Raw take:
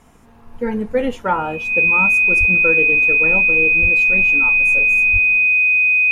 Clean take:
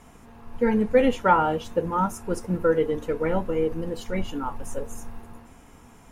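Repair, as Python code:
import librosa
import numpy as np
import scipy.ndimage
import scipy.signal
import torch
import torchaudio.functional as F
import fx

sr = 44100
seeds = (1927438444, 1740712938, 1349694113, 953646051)

y = fx.notch(x, sr, hz=2500.0, q=30.0)
y = fx.highpass(y, sr, hz=140.0, slope=24, at=(2.39, 2.51), fade=0.02)
y = fx.highpass(y, sr, hz=140.0, slope=24, at=(3.81, 3.93), fade=0.02)
y = fx.highpass(y, sr, hz=140.0, slope=24, at=(5.12, 5.24), fade=0.02)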